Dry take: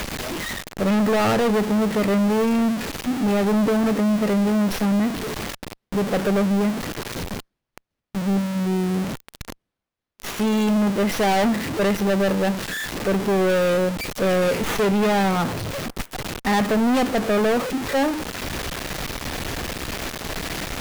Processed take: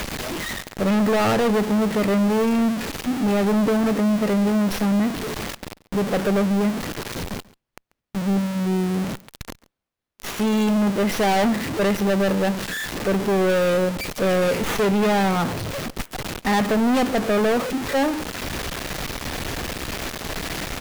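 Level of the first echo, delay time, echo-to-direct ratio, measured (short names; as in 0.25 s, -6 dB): -21.5 dB, 0.139 s, -21.5 dB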